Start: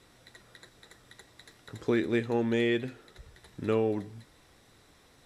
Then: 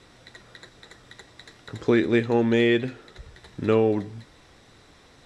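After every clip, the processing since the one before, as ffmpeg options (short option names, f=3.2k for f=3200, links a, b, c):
-af "lowpass=7.1k,volume=7dB"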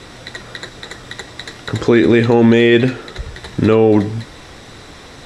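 -af "alimiter=level_in=17.5dB:limit=-1dB:release=50:level=0:latency=1,volume=-1dB"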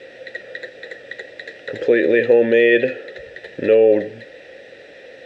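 -filter_complex "[0:a]asplit=3[a][b][c];[a]bandpass=f=530:t=q:w=8,volume=0dB[d];[b]bandpass=f=1.84k:t=q:w=8,volume=-6dB[e];[c]bandpass=f=2.48k:t=q:w=8,volume=-9dB[f];[d][e][f]amix=inputs=3:normalize=0,volume=8.5dB"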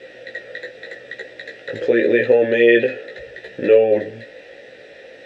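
-af "flanger=delay=15.5:depth=2.7:speed=0.84,volume=3dB"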